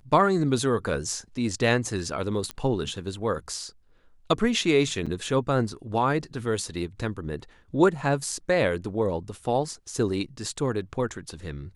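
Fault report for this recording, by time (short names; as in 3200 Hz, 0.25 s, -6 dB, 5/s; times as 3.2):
2.51 pop -17 dBFS
5.06–5.07 gap 5.9 ms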